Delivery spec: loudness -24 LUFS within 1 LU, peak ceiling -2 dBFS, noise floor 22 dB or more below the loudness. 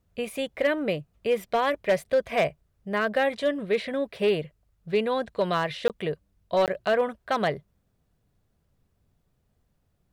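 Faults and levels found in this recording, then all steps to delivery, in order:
clipped samples 0.4%; clipping level -16.0 dBFS; dropouts 2; longest dropout 18 ms; loudness -27.0 LUFS; peak level -16.0 dBFS; loudness target -24.0 LUFS
-> clip repair -16 dBFS; interpolate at 5.88/6.66 s, 18 ms; trim +3 dB

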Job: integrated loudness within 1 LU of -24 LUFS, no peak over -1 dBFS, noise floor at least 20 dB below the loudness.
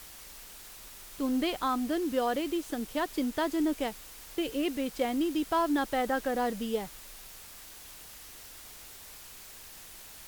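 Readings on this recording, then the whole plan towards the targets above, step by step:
noise floor -49 dBFS; noise floor target -51 dBFS; loudness -31.0 LUFS; peak level -17.5 dBFS; loudness target -24.0 LUFS
-> noise reduction 6 dB, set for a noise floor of -49 dBFS; trim +7 dB

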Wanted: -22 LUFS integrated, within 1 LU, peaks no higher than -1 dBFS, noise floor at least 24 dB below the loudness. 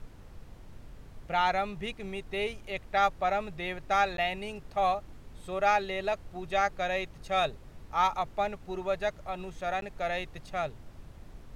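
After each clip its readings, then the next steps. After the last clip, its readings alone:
dropouts 2; longest dropout 12 ms; noise floor -50 dBFS; noise floor target -56 dBFS; loudness -31.5 LUFS; peak level -13.0 dBFS; loudness target -22.0 LUFS
-> interpolate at 4.17/9.81 s, 12 ms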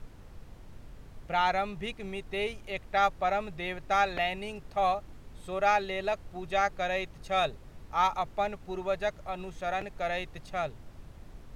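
dropouts 0; noise floor -50 dBFS; noise floor target -56 dBFS
-> noise print and reduce 6 dB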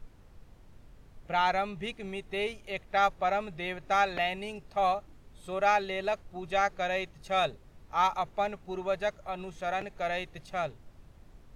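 noise floor -56 dBFS; loudness -31.5 LUFS; peak level -13.5 dBFS; loudness target -22.0 LUFS
-> trim +9.5 dB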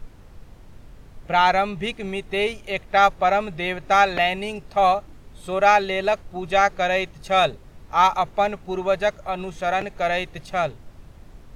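loudness -22.0 LUFS; peak level -4.0 dBFS; noise floor -46 dBFS

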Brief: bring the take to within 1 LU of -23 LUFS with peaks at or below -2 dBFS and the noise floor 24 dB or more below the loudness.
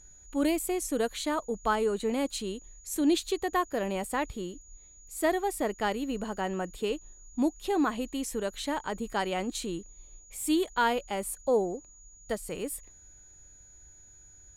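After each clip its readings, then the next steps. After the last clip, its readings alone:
steady tone 6.8 kHz; tone level -53 dBFS; loudness -31.0 LUFS; peak level -13.5 dBFS; loudness target -23.0 LUFS
-> band-stop 6.8 kHz, Q 30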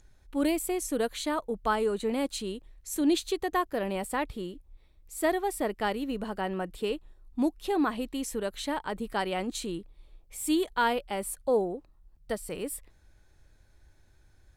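steady tone not found; loudness -31.0 LUFS; peak level -13.5 dBFS; loudness target -23.0 LUFS
-> trim +8 dB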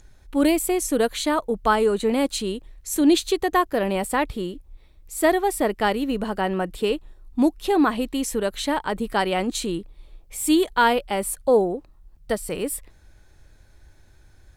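loudness -23.0 LUFS; peak level -5.5 dBFS; noise floor -53 dBFS

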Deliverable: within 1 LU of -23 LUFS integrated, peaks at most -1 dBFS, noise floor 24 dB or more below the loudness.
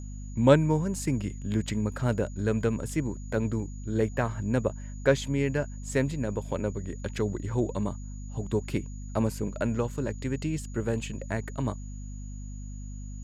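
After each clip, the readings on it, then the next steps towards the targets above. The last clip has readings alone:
hum 50 Hz; highest harmonic 250 Hz; hum level -36 dBFS; steady tone 6.8 kHz; tone level -53 dBFS; loudness -29.5 LUFS; peak level -6.5 dBFS; loudness target -23.0 LUFS
-> de-hum 50 Hz, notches 5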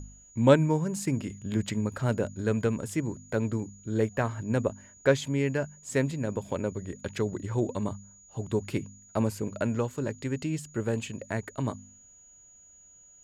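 hum not found; steady tone 6.8 kHz; tone level -53 dBFS
-> band-stop 6.8 kHz, Q 30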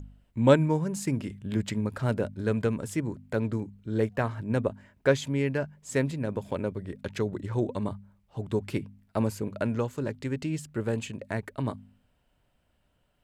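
steady tone not found; loudness -30.0 LUFS; peak level -7.0 dBFS; loudness target -23.0 LUFS
-> trim +7 dB; peak limiter -1 dBFS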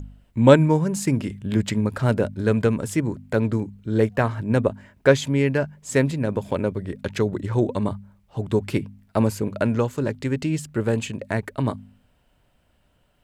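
loudness -23.0 LUFS; peak level -1.0 dBFS; noise floor -64 dBFS

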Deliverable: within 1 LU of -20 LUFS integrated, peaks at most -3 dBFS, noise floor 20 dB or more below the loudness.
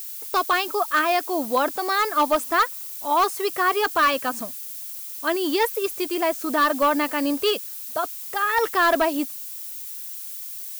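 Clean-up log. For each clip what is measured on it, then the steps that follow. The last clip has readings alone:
clipped samples 0.7%; clipping level -13.5 dBFS; noise floor -35 dBFS; noise floor target -43 dBFS; loudness -23.0 LUFS; peak level -13.5 dBFS; loudness target -20.0 LUFS
-> clip repair -13.5 dBFS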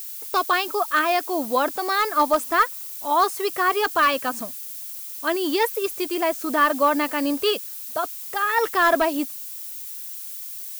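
clipped samples 0.0%; noise floor -35 dBFS; noise floor target -43 dBFS
-> noise reduction 8 dB, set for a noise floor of -35 dBFS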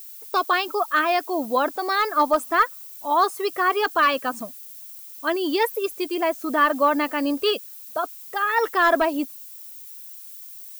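noise floor -41 dBFS; noise floor target -43 dBFS
-> noise reduction 6 dB, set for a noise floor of -41 dBFS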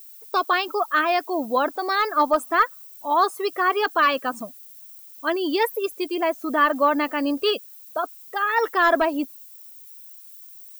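noise floor -45 dBFS; loudness -22.5 LUFS; peak level -7.0 dBFS; loudness target -20.0 LUFS
-> trim +2.5 dB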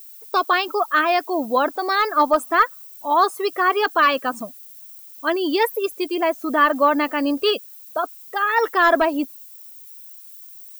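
loudness -20.0 LUFS; peak level -4.5 dBFS; noise floor -42 dBFS

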